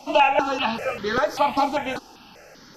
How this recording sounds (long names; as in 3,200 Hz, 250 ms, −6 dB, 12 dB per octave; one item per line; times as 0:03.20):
notches that jump at a steady rate 5.1 Hz 450–2,600 Hz